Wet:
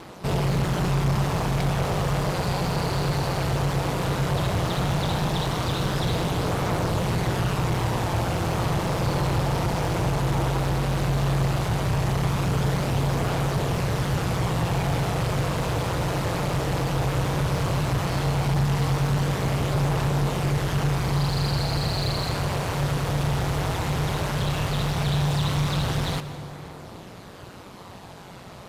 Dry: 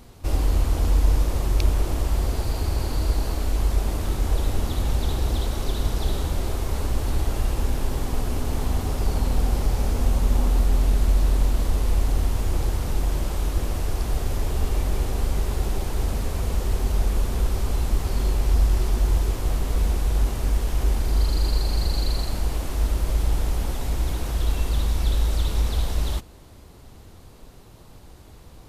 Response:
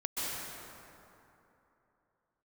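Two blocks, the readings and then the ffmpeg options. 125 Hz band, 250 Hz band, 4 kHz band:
+3.0 dB, +6.0 dB, +4.5 dB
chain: -filter_complex "[0:a]aphaser=in_gain=1:out_gain=1:delay=2.8:decay=0.22:speed=0.15:type=triangular,aeval=exprs='val(0)*sin(2*PI*92*n/s)':c=same,asplit=2[a][b];[b]highpass=f=720:p=1,volume=30dB,asoftclip=type=tanh:threshold=-6dB[c];[a][c]amix=inputs=2:normalize=0,lowpass=f=2.3k:p=1,volume=-6dB,asplit=2[d][e];[1:a]atrim=start_sample=2205[f];[e][f]afir=irnorm=-1:irlink=0,volume=-16.5dB[g];[d][g]amix=inputs=2:normalize=0,volume=-8.5dB"

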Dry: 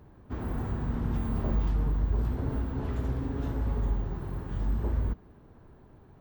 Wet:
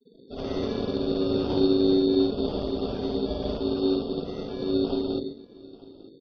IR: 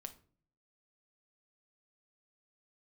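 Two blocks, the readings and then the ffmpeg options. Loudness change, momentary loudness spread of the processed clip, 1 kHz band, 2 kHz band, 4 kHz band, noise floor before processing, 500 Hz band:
+5.5 dB, 11 LU, +3.5 dB, -0.5 dB, +22.5 dB, -55 dBFS, +16.0 dB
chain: -filter_complex "[0:a]asplit=2[a][b];[1:a]atrim=start_sample=2205,adelay=58[c];[b][c]afir=irnorm=-1:irlink=0,volume=10dB[d];[a][d]amix=inputs=2:normalize=0,afftfilt=real='re*gte(hypot(re,im),0.0251)':imag='im*gte(hypot(re,im),0.0251)':win_size=1024:overlap=0.75,aecho=1:1:895:0.0841,aeval=exprs='val(0)*sin(2*PI*330*n/s)':c=same,bandreject=f=47.8:t=h:w=4,bandreject=f=95.6:t=h:w=4,bandreject=f=143.4:t=h:w=4,bandreject=f=191.2:t=h:w=4,bandreject=f=239:t=h:w=4,bandreject=f=286.8:t=h:w=4,bandreject=f=334.6:t=h:w=4,acrusher=samples=11:mix=1:aa=0.000001,volume=-1.5dB" -ar 44100 -c:a ac3 -b:a 32k

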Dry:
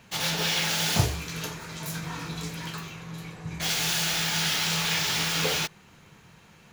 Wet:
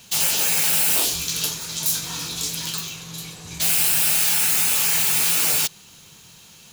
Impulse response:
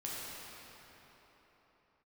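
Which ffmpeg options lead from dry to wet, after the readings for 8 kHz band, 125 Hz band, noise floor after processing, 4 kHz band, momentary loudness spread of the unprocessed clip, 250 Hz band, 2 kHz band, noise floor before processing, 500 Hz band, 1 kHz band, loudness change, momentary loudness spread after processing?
+10.5 dB, -6.0 dB, -48 dBFS, +2.5 dB, 13 LU, -3.0 dB, +1.5 dB, -55 dBFS, -1.5 dB, 0.0 dB, +8.0 dB, 12 LU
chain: -af "aexciter=amount=5.8:drive=3.8:freq=2.9k,afftfilt=real='re*lt(hypot(re,im),0.2)':imag='im*lt(hypot(re,im),0.2)':win_size=1024:overlap=0.75"

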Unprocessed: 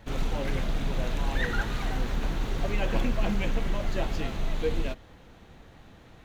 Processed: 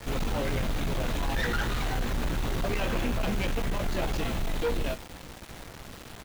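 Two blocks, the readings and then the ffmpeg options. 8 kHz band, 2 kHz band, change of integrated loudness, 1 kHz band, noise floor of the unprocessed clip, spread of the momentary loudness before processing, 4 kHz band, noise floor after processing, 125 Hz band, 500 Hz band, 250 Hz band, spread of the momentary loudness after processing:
n/a, +1.0 dB, +0.5 dB, +2.0 dB, -52 dBFS, 4 LU, +2.5 dB, -46 dBFS, +0.5 dB, +1.0 dB, +0.5 dB, 15 LU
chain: -filter_complex "[0:a]asplit=2[a][b];[b]adelay=17,volume=-7dB[c];[a][c]amix=inputs=2:normalize=0,aeval=exprs='(tanh(28.2*val(0)+0.05)-tanh(0.05))/28.2':c=same,acrusher=bits=7:mix=0:aa=0.000001,volume=5dB"

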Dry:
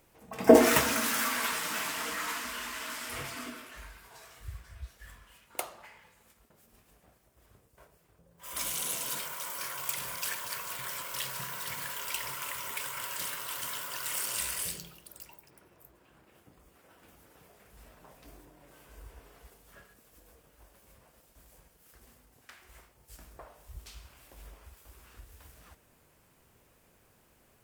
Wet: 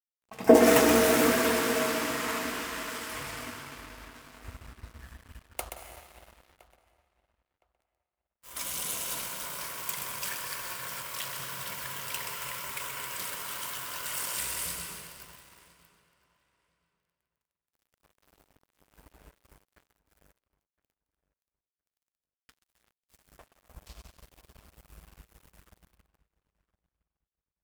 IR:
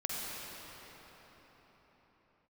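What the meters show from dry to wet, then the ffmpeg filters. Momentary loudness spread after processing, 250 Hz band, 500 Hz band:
23 LU, +3.0 dB, +3.0 dB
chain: -filter_complex "[0:a]asplit=2[a][b];[1:a]atrim=start_sample=2205,lowshelf=f=180:g=4,adelay=127[c];[b][c]afir=irnorm=-1:irlink=0,volume=-5dB[d];[a][d]amix=inputs=2:normalize=0,aeval=exprs='sgn(val(0))*max(abs(val(0))-0.00501,0)':c=same,asplit=2[e][f];[f]adelay=1014,lowpass=f=3k:p=1,volume=-20dB,asplit=2[g][h];[h]adelay=1014,lowpass=f=3k:p=1,volume=0.21[i];[e][g][i]amix=inputs=3:normalize=0"

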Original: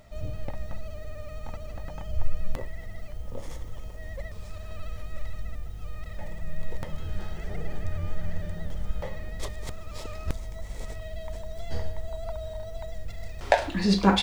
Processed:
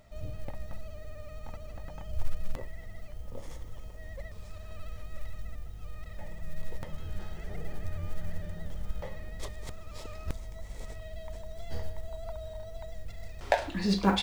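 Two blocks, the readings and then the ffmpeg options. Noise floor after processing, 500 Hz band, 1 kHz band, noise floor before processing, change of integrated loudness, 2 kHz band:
-44 dBFS, -5.0 dB, -5.0 dB, -39 dBFS, -5.0 dB, -5.0 dB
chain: -af "acrusher=bits=9:mode=log:mix=0:aa=0.000001,volume=-5dB"

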